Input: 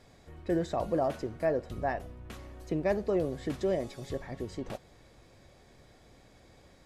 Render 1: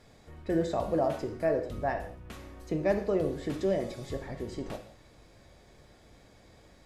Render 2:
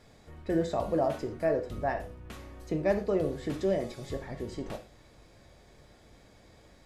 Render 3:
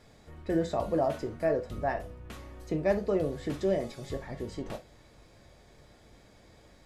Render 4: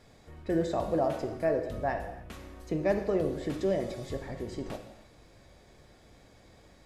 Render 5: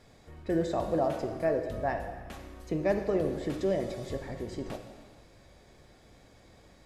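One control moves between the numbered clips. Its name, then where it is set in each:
gated-style reverb, gate: 210 ms, 140 ms, 90 ms, 340 ms, 520 ms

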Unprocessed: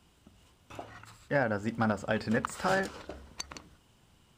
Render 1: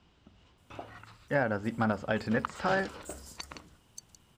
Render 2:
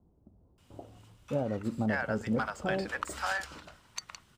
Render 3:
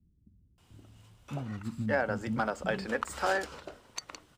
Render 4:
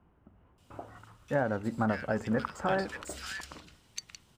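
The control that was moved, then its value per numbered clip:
bands offset in time, split: 6 kHz, 730 Hz, 260 Hz, 1.8 kHz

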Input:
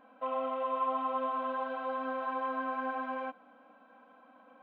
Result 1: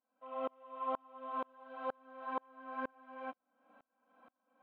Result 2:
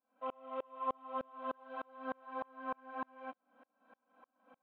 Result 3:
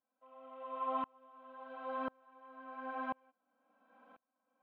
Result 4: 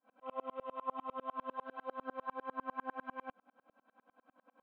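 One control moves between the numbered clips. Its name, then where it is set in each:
sawtooth tremolo in dB, rate: 2.1 Hz, 3.3 Hz, 0.96 Hz, 10 Hz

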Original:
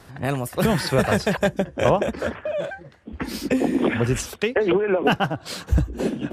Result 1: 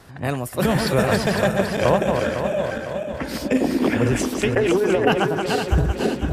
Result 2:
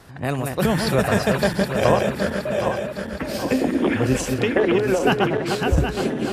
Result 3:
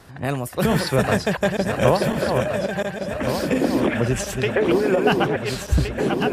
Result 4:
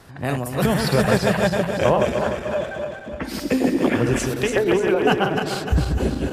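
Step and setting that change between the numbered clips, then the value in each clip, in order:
backward echo that repeats, time: 253 ms, 384 ms, 709 ms, 150 ms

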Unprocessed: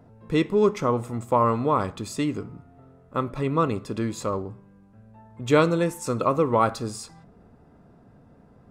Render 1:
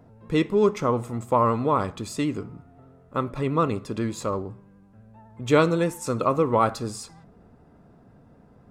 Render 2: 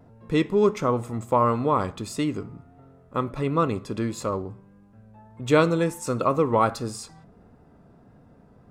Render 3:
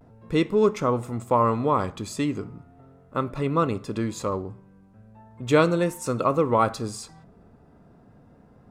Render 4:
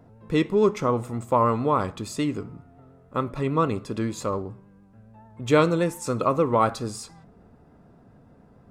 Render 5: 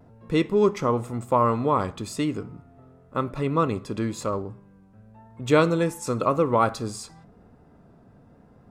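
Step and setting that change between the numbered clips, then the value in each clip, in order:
vibrato, rate: 12 Hz, 1.5 Hz, 0.38 Hz, 6.9 Hz, 0.97 Hz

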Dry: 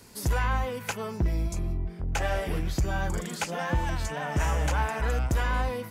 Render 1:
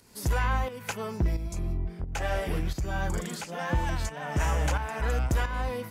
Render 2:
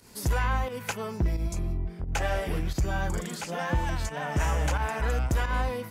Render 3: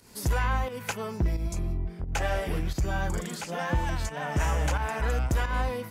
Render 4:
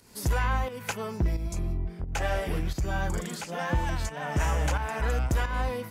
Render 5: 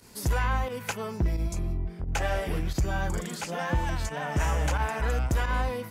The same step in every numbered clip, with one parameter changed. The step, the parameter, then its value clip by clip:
volume shaper, release: 487 ms, 113 ms, 166 ms, 277 ms, 66 ms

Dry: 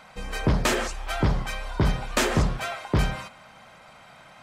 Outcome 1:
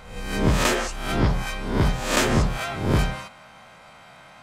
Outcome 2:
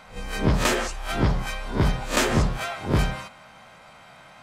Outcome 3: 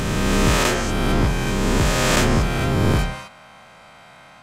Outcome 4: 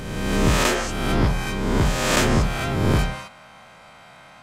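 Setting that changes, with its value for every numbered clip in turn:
reverse spectral sustain, rising 60 dB in: 0.63 s, 0.3 s, 3.09 s, 1.49 s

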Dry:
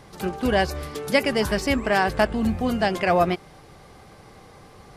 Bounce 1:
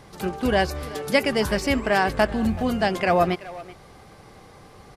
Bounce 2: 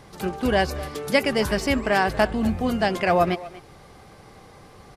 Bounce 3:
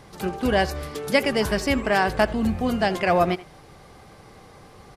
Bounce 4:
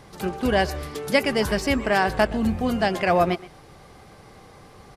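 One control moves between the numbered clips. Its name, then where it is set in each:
speakerphone echo, time: 380 ms, 240 ms, 80 ms, 120 ms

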